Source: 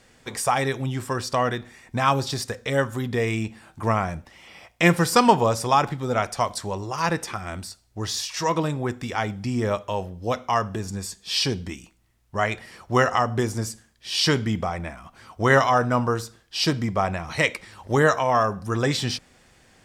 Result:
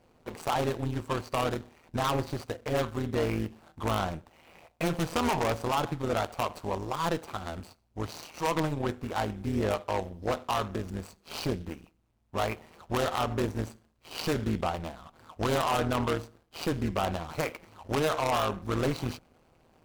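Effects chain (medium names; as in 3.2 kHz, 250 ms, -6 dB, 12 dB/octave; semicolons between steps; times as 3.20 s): median filter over 25 samples; bass shelf 420 Hz -6.5 dB; peak limiter -17 dBFS, peak gain reduction 9.5 dB; Chebyshev shaper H 5 -9 dB, 7 -15 dB, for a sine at -17 dBFS; AM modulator 160 Hz, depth 60%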